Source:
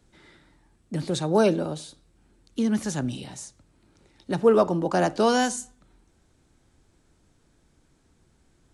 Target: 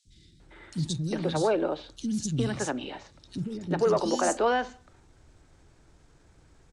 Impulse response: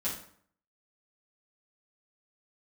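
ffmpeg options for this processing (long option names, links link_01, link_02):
-filter_complex "[0:a]asplit=2[link_01][link_02];[link_02]asoftclip=type=tanh:threshold=-16dB,volume=-5dB[link_03];[link_01][link_03]amix=inputs=2:normalize=0,alimiter=limit=-17dB:level=0:latency=1:release=173,atempo=1.3,lowpass=7100,equalizer=frequency=220:width=2:gain=-4,acrossover=split=250|3500[link_04][link_05][link_06];[link_04]adelay=50[link_07];[link_05]adelay=400[link_08];[link_07][link_08][link_06]amix=inputs=3:normalize=0,volume=2.5dB"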